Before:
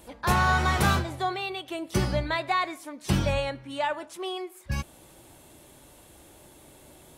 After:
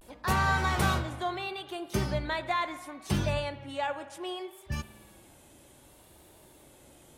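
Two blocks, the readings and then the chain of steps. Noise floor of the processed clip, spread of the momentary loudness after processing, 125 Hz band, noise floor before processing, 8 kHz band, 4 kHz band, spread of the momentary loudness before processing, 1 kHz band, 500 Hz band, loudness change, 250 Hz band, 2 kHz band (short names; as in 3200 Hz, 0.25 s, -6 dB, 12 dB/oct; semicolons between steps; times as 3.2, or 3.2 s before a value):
-57 dBFS, 12 LU, -3.5 dB, -53 dBFS, -4.0 dB, -4.0 dB, 12 LU, -4.0 dB, -3.5 dB, -4.0 dB, -4.0 dB, -3.5 dB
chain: spring tank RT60 1.8 s, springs 53 ms, chirp 55 ms, DRR 13.5 dB; vibrato 0.68 Hz 89 cents; gain -4 dB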